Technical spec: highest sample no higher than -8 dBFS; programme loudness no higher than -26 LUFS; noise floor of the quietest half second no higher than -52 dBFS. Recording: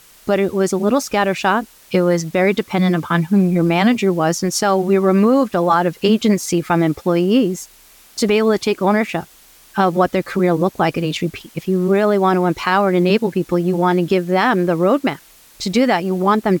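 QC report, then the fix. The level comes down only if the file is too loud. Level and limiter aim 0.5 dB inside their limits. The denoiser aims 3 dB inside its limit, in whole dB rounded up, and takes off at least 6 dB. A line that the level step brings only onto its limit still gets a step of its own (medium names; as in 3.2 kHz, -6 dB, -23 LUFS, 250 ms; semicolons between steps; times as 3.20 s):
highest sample -4.5 dBFS: fail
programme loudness -17.0 LUFS: fail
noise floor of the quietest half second -47 dBFS: fail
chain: trim -9.5 dB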